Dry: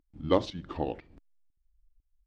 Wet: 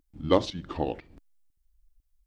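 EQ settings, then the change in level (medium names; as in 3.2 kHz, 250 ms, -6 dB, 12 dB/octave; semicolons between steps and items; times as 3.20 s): treble shelf 5.3 kHz +7 dB; +2.5 dB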